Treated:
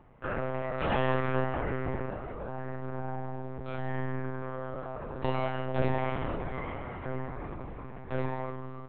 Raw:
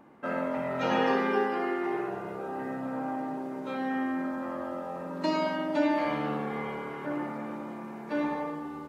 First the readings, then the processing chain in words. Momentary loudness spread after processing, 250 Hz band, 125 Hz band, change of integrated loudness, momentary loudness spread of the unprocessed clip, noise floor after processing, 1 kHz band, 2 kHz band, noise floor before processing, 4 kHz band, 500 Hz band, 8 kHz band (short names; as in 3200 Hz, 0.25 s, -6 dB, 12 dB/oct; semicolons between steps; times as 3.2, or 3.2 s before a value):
10 LU, -7.0 dB, +10.0 dB, -3.0 dB, 10 LU, -42 dBFS, -3.5 dB, -3.0 dB, -41 dBFS, -5.0 dB, -2.5 dB, n/a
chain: monotone LPC vocoder at 8 kHz 130 Hz; gain -1.5 dB